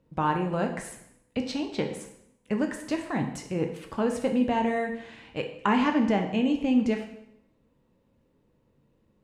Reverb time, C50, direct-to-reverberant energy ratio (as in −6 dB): 0.75 s, 8.0 dB, 4.0 dB